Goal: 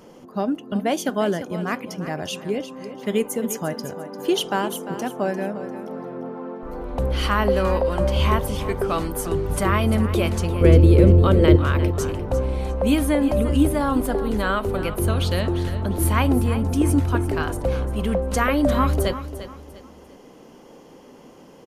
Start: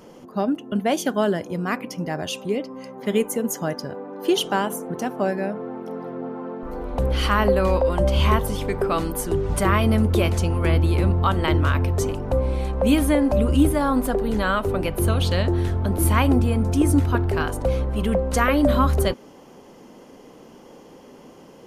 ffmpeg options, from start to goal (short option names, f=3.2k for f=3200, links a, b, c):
-filter_complex "[0:a]asettb=1/sr,asplit=3[a][b][c];[a]atrim=end=10.614[d];[b]atrim=start=10.61:end=11.56,asetpts=PTS-STARTPTS,afade=t=in:d=0.004:c=qsin,afade=t=out:st=0.946:d=0.004:c=qsin,lowshelf=f=650:t=q:w=3:g=7[e];[c]atrim=start=11.556[f];[d][e]acrossfade=d=0.004:c1=hsin:c2=qsin[g];[g][f]acrossfade=d=0.004:c1=qsin:c2=hsin,asplit=2[h][i];[i]aecho=0:1:348|696|1044:0.237|0.0759|0.0243[j];[h][j]amix=inputs=2:normalize=0,volume=-1dB"